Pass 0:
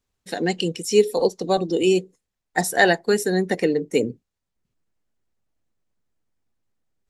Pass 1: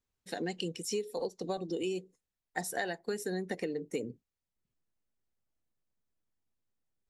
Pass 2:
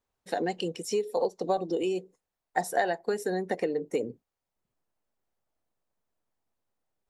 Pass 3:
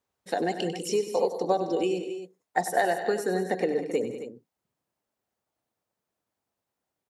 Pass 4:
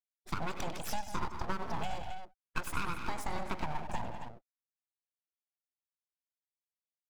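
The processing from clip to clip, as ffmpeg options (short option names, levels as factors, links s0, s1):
-af "acompressor=threshold=0.0794:ratio=10,volume=0.355"
-af "equalizer=f=740:t=o:w=2:g=11"
-af "highpass=87,aecho=1:1:97|159|196|268:0.282|0.133|0.211|0.251,volume=1.26"
-af "acompressor=threshold=0.0447:ratio=3,afftfilt=real='re*gte(hypot(re,im),0.00398)':imag='im*gte(hypot(re,im),0.00398)':win_size=1024:overlap=0.75,aeval=exprs='abs(val(0))':c=same,volume=0.708"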